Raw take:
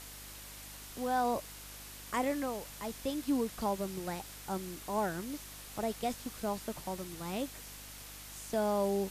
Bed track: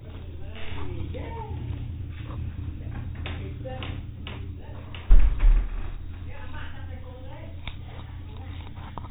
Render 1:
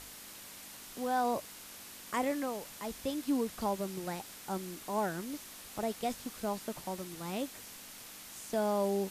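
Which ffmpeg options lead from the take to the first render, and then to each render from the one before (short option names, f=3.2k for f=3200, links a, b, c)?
-af "bandreject=f=50:t=h:w=4,bandreject=f=100:t=h:w=4,bandreject=f=150:t=h:w=4"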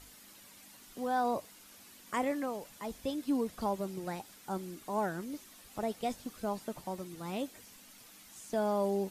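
-af "afftdn=nr=9:nf=-50"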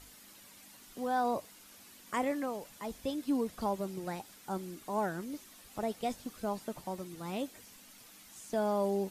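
-af anull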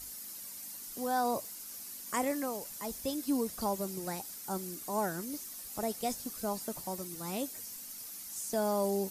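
-af "aexciter=amount=2.2:drive=8.3:freq=4.6k"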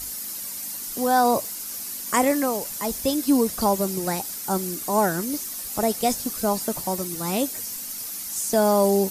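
-af "volume=12dB"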